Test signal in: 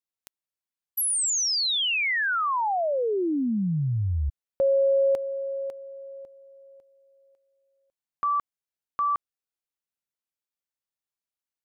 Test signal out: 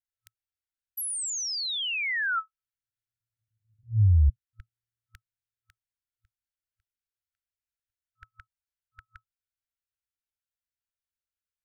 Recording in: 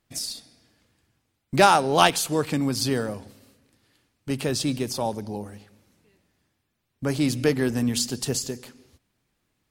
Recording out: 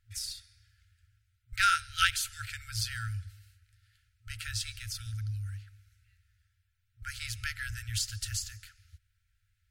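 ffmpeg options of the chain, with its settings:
-af "afftfilt=real='re*(1-between(b*sr/4096,110,1300))':imag='im*(1-between(b*sr/4096,110,1300))':win_size=4096:overlap=0.75,tiltshelf=f=1100:g=7"

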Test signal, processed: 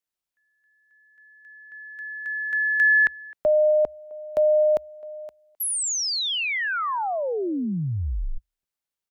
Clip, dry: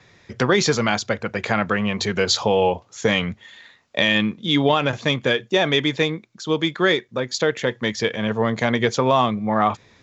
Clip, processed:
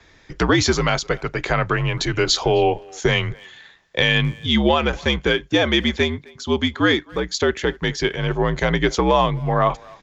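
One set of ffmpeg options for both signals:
-filter_complex "[0:a]afreqshift=-70,asplit=2[s0][s1];[s1]adelay=260,highpass=300,lowpass=3400,asoftclip=type=hard:threshold=0.2,volume=0.0708[s2];[s0][s2]amix=inputs=2:normalize=0,volume=1.12"

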